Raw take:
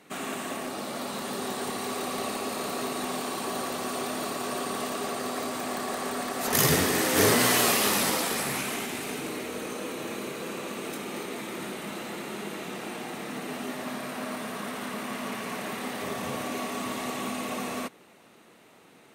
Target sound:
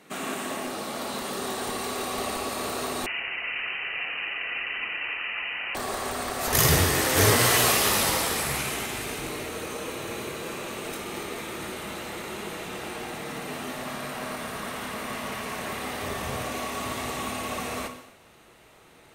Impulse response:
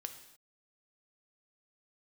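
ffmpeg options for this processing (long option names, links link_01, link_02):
-filter_complex "[0:a]asubboost=boost=10:cutoff=66[link_01];[1:a]atrim=start_sample=2205[link_02];[link_01][link_02]afir=irnorm=-1:irlink=0,asettb=1/sr,asplit=3[link_03][link_04][link_05];[link_03]atrim=end=3.064[link_06];[link_04]atrim=start=3.06:end=5.75,asetpts=PTS-STARTPTS,afade=type=in:duration=0.004:curve=qsin,afade=type=out:start_time=2.686:duration=0.004:curve=qsin,lowpass=frequency=2600:width_type=q:width=0.5098,lowpass=frequency=2600:width_type=q:width=0.6013,lowpass=frequency=2600:width_type=q:width=0.9,lowpass=frequency=2600:width_type=q:width=2.563,afreqshift=-3100[link_07];[link_05]atrim=start=5.746[link_08];[link_06][link_07]acrossfade=duration=0.004:curve1=hsin:curve2=qsin[link_09];[link_09][link_08]acrossfade=duration=0.004:curve1=qsin:curve2=hsin,volume=5dB"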